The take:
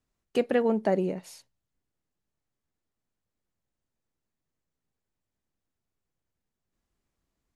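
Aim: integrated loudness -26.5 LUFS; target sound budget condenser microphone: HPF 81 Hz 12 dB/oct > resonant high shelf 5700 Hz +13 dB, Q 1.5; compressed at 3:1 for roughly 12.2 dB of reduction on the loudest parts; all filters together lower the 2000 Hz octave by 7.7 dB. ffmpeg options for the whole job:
-af "equalizer=f=2k:t=o:g=-8,acompressor=threshold=-37dB:ratio=3,highpass=81,highshelf=f=5.7k:t=q:w=1.5:g=13,volume=12dB"

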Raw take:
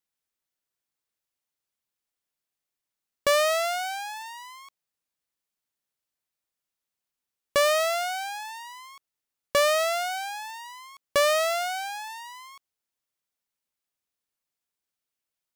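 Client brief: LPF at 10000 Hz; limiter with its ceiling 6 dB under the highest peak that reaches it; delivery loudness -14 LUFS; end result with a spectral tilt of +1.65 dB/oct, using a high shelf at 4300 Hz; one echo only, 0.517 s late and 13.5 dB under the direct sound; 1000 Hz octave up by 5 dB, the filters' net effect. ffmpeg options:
-af "lowpass=10k,equalizer=f=1k:t=o:g=6.5,highshelf=f=4.3k:g=8.5,alimiter=limit=-12.5dB:level=0:latency=1,aecho=1:1:517:0.211,volume=11dB"

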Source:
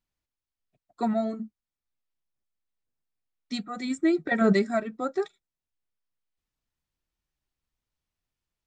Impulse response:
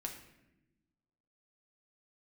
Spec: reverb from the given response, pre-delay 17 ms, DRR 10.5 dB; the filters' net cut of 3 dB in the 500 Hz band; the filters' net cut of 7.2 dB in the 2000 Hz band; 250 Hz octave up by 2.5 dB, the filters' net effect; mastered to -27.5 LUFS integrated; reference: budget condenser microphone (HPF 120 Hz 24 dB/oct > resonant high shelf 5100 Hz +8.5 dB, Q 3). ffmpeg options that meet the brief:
-filter_complex "[0:a]equalizer=f=250:t=o:g=5,equalizer=f=500:t=o:g=-6.5,equalizer=f=2k:t=o:g=-6.5,asplit=2[a][b];[1:a]atrim=start_sample=2205,adelay=17[c];[b][c]afir=irnorm=-1:irlink=0,volume=-9dB[d];[a][d]amix=inputs=2:normalize=0,highpass=f=120:w=0.5412,highpass=f=120:w=1.3066,highshelf=f=5.1k:t=q:w=3:g=8.5,volume=-1dB"

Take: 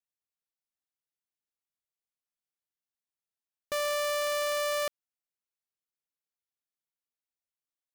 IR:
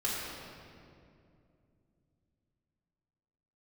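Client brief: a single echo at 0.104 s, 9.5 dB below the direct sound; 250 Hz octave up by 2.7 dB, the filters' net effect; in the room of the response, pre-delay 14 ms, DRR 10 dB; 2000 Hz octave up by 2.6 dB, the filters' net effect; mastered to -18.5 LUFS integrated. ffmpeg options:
-filter_complex "[0:a]equalizer=f=250:t=o:g=3.5,equalizer=f=2k:t=o:g=3,aecho=1:1:104:0.335,asplit=2[a][b];[1:a]atrim=start_sample=2205,adelay=14[c];[b][c]afir=irnorm=-1:irlink=0,volume=-17dB[d];[a][d]amix=inputs=2:normalize=0,volume=11dB"

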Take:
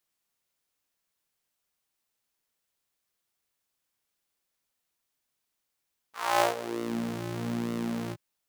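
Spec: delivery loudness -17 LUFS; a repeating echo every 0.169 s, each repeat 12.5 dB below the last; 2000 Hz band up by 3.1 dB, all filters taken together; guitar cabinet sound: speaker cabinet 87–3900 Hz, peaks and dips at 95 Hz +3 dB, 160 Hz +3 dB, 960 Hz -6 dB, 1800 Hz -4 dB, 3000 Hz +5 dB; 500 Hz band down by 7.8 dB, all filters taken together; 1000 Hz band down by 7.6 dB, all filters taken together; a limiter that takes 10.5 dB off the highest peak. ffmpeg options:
-af "equalizer=f=500:t=o:g=-9,equalizer=f=1k:t=o:g=-5.5,equalizer=f=2k:t=o:g=8,alimiter=limit=-18dB:level=0:latency=1,highpass=87,equalizer=f=95:t=q:w=4:g=3,equalizer=f=160:t=q:w=4:g=3,equalizer=f=960:t=q:w=4:g=-6,equalizer=f=1.8k:t=q:w=4:g=-4,equalizer=f=3k:t=q:w=4:g=5,lowpass=f=3.9k:w=0.5412,lowpass=f=3.9k:w=1.3066,aecho=1:1:169|338|507:0.237|0.0569|0.0137,volume=18.5dB"

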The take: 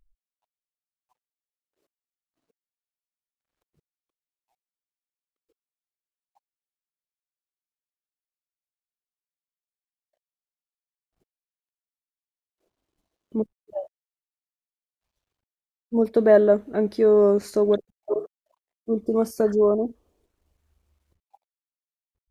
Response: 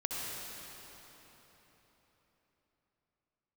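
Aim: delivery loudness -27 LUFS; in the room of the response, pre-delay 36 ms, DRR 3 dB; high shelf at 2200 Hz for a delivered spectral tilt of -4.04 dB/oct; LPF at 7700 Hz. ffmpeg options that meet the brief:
-filter_complex "[0:a]lowpass=7.7k,highshelf=f=2.2k:g=7,asplit=2[a][b];[1:a]atrim=start_sample=2205,adelay=36[c];[b][c]afir=irnorm=-1:irlink=0,volume=-7.5dB[d];[a][d]amix=inputs=2:normalize=0,volume=-6.5dB"

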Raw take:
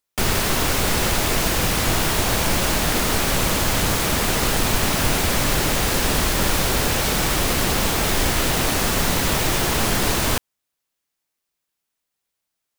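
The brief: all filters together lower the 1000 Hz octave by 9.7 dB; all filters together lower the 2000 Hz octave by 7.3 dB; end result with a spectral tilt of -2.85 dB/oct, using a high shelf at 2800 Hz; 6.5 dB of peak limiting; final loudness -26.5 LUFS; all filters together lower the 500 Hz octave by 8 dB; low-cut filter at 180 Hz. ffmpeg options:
-af "highpass=180,equalizer=f=500:t=o:g=-7.5,equalizer=f=1k:t=o:g=-8.5,equalizer=f=2k:t=o:g=-3.5,highshelf=f=2.8k:g=-6.5,volume=1dB,alimiter=limit=-17.5dB:level=0:latency=1"

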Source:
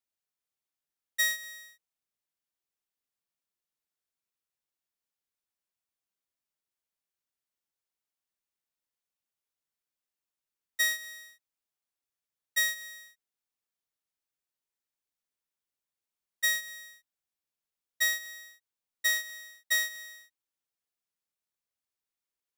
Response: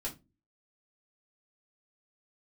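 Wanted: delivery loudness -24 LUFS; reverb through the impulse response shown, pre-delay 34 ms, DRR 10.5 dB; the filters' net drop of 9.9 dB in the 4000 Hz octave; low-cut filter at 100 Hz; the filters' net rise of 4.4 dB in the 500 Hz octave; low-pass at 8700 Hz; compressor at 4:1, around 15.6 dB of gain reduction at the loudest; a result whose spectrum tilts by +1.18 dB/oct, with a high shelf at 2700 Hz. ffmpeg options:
-filter_complex "[0:a]highpass=100,lowpass=8.7k,equalizer=f=500:t=o:g=7,highshelf=f=2.7k:g=-7,equalizer=f=4k:t=o:g=-5.5,acompressor=threshold=-47dB:ratio=4,asplit=2[a][b];[1:a]atrim=start_sample=2205,adelay=34[c];[b][c]afir=irnorm=-1:irlink=0,volume=-11dB[d];[a][d]amix=inputs=2:normalize=0,volume=25dB"

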